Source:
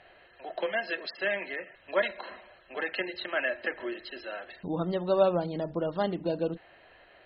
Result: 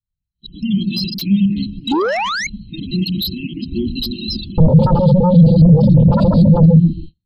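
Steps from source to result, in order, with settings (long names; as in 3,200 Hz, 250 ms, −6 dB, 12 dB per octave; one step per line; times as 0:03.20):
reversed piece by piece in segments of 208 ms
automatic gain control gain up to 15.5 dB
brickwall limiter −12 dBFS, peak gain reduction 10.5 dB
inverse Chebyshev band-stop filter 520–1,700 Hz, stop band 60 dB
echo through a band-pass that steps 134 ms, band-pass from 170 Hz, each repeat 0.7 octaves, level −2.5 dB
sound drawn into the spectrogram rise, 0:01.91–0:02.47, 260–2,300 Hz −28 dBFS
sine wavefolder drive 18 dB, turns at −12.5 dBFS
noise gate −33 dBFS, range −21 dB
low-shelf EQ 160 Hz +9.5 dB
every bin expanded away from the loudest bin 1.5 to 1
level +3 dB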